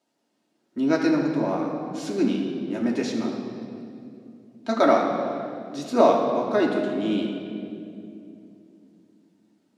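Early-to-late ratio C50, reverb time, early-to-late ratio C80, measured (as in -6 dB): 3.0 dB, 2.7 s, 4.5 dB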